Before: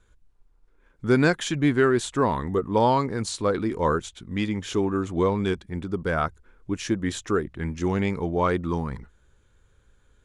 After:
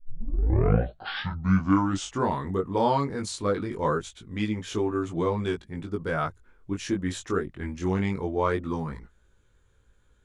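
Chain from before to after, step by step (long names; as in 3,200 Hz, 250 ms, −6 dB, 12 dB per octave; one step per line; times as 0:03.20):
turntable start at the beginning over 2.35 s
chorus effect 0.2 Hz, delay 18 ms, depth 3.5 ms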